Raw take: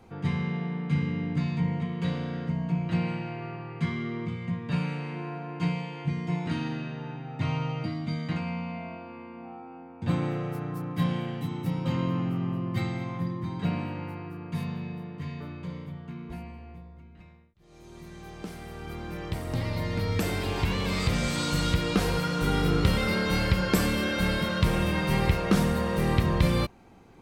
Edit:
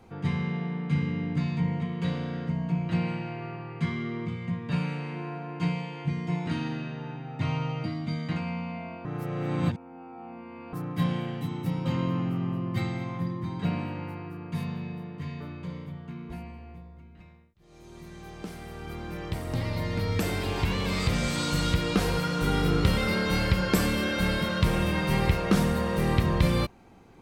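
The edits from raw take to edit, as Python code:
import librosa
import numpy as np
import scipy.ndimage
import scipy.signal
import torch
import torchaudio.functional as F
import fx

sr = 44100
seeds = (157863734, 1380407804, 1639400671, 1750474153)

y = fx.edit(x, sr, fx.reverse_span(start_s=9.05, length_s=1.68), tone=tone)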